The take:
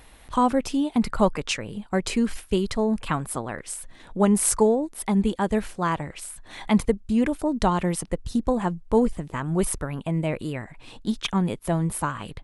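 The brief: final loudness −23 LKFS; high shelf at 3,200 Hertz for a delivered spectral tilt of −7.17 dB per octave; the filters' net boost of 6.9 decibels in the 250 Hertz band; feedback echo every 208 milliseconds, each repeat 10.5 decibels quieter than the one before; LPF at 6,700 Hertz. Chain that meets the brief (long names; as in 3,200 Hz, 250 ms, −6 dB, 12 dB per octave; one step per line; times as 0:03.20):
low-pass filter 6,700 Hz
parametric band 250 Hz +8.5 dB
high-shelf EQ 3,200 Hz −8 dB
repeating echo 208 ms, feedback 30%, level −10.5 dB
level −3.5 dB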